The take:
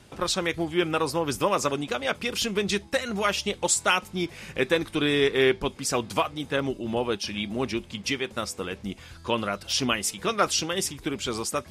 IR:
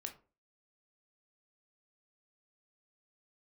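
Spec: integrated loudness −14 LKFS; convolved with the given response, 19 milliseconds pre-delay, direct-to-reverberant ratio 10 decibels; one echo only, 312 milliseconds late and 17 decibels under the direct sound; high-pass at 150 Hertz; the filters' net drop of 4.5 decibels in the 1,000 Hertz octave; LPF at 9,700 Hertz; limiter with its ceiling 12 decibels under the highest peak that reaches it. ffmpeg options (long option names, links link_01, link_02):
-filter_complex "[0:a]highpass=150,lowpass=9700,equalizer=frequency=1000:width_type=o:gain=-6,alimiter=limit=-21.5dB:level=0:latency=1,aecho=1:1:312:0.141,asplit=2[link_01][link_02];[1:a]atrim=start_sample=2205,adelay=19[link_03];[link_02][link_03]afir=irnorm=-1:irlink=0,volume=-7dB[link_04];[link_01][link_04]amix=inputs=2:normalize=0,volume=18dB"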